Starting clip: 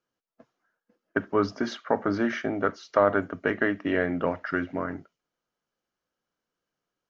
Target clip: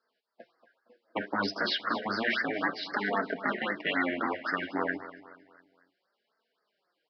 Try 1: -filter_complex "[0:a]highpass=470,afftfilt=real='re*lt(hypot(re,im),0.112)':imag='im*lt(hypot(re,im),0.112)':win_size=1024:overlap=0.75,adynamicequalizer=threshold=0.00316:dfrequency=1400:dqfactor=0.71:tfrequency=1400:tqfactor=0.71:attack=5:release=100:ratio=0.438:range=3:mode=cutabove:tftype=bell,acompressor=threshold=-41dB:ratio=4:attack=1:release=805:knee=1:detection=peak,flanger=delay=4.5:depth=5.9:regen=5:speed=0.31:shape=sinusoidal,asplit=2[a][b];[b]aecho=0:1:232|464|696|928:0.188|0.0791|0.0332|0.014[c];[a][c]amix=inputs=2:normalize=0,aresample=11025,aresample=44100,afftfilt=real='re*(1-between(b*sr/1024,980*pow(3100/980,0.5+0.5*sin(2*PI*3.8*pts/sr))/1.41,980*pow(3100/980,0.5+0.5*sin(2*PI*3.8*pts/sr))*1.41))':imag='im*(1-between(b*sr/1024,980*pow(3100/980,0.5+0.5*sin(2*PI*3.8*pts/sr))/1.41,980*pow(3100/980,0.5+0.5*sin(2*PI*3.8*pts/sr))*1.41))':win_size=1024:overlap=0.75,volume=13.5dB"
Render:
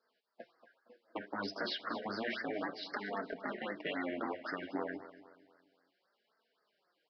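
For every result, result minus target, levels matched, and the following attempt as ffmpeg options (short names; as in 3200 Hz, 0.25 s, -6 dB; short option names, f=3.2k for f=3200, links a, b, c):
compressor: peak gain reduction +12 dB; 500 Hz band +3.0 dB
-filter_complex "[0:a]highpass=470,afftfilt=real='re*lt(hypot(re,im),0.112)':imag='im*lt(hypot(re,im),0.112)':win_size=1024:overlap=0.75,adynamicequalizer=threshold=0.00316:dfrequency=1400:dqfactor=0.71:tfrequency=1400:tqfactor=0.71:attack=5:release=100:ratio=0.438:range=3:mode=cutabove:tftype=bell,flanger=delay=4.5:depth=5.9:regen=5:speed=0.31:shape=sinusoidal,asplit=2[a][b];[b]aecho=0:1:232|464|696|928:0.188|0.0791|0.0332|0.014[c];[a][c]amix=inputs=2:normalize=0,aresample=11025,aresample=44100,afftfilt=real='re*(1-between(b*sr/1024,980*pow(3100/980,0.5+0.5*sin(2*PI*3.8*pts/sr))/1.41,980*pow(3100/980,0.5+0.5*sin(2*PI*3.8*pts/sr))*1.41))':imag='im*(1-between(b*sr/1024,980*pow(3100/980,0.5+0.5*sin(2*PI*3.8*pts/sr))/1.41,980*pow(3100/980,0.5+0.5*sin(2*PI*3.8*pts/sr))*1.41))':win_size=1024:overlap=0.75,volume=13.5dB"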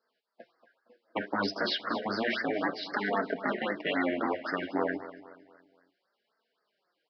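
500 Hz band +3.0 dB
-filter_complex "[0:a]highpass=470,afftfilt=real='re*lt(hypot(re,im),0.112)':imag='im*lt(hypot(re,im),0.112)':win_size=1024:overlap=0.75,adynamicequalizer=threshold=0.00316:dfrequency=620:dqfactor=0.71:tfrequency=620:tqfactor=0.71:attack=5:release=100:ratio=0.438:range=3:mode=cutabove:tftype=bell,flanger=delay=4.5:depth=5.9:regen=5:speed=0.31:shape=sinusoidal,asplit=2[a][b];[b]aecho=0:1:232|464|696|928:0.188|0.0791|0.0332|0.014[c];[a][c]amix=inputs=2:normalize=0,aresample=11025,aresample=44100,afftfilt=real='re*(1-between(b*sr/1024,980*pow(3100/980,0.5+0.5*sin(2*PI*3.8*pts/sr))/1.41,980*pow(3100/980,0.5+0.5*sin(2*PI*3.8*pts/sr))*1.41))':imag='im*(1-between(b*sr/1024,980*pow(3100/980,0.5+0.5*sin(2*PI*3.8*pts/sr))/1.41,980*pow(3100/980,0.5+0.5*sin(2*PI*3.8*pts/sr))*1.41))':win_size=1024:overlap=0.75,volume=13.5dB"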